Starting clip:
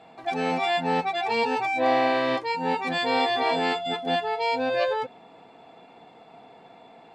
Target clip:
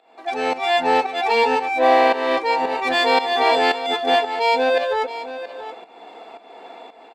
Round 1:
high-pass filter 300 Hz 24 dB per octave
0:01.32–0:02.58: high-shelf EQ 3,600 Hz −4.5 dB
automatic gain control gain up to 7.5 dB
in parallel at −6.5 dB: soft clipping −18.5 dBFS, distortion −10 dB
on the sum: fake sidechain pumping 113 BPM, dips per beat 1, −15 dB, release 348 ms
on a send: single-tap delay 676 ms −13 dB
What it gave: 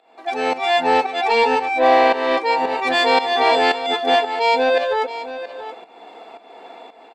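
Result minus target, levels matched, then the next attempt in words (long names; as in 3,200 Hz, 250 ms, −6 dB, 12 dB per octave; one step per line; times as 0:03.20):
soft clipping: distortion −6 dB
high-pass filter 300 Hz 24 dB per octave
0:01.32–0:02.58: high-shelf EQ 3,600 Hz −4.5 dB
automatic gain control gain up to 7.5 dB
in parallel at −6.5 dB: soft clipping −29 dBFS, distortion −4 dB
on the sum: fake sidechain pumping 113 BPM, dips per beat 1, −15 dB, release 348 ms
on a send: single-tap delay 676 ms −13 dB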